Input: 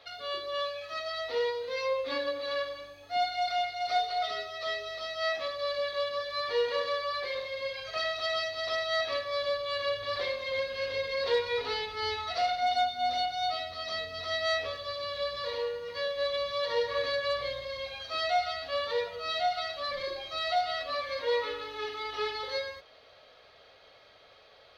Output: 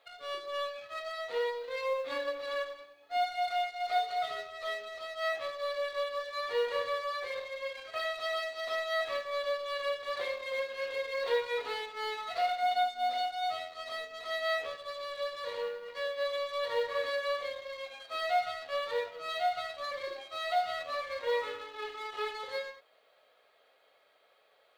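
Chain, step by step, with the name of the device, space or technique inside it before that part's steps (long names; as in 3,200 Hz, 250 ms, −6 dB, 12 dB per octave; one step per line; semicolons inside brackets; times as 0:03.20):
phone line with mismatched companding (band-pass filter 360–3,200 Hz; mu-law and A-law mismatch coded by A)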